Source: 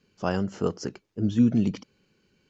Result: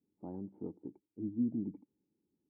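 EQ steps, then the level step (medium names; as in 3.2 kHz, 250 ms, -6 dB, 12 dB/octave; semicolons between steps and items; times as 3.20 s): cascade formant filter u; high-pass 42 Hz; -6.0 dB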